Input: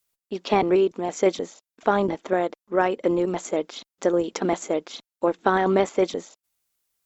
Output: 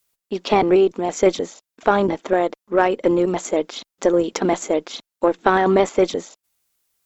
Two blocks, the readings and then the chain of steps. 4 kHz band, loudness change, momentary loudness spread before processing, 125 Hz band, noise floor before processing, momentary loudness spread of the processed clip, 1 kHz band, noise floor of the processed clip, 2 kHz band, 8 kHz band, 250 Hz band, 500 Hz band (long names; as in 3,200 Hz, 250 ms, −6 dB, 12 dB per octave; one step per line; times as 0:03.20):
+5.0 dB, +4.0 dB, 13 LU, +3.5 dB, below −85 dBFS, 12 LU, +4.5 dB, −85 dBFS, +4.5 dB, can't be measured, +4.5 dB, +4.5 dB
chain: one-sided soft clipper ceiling −9 dBFS
level +5.5 dB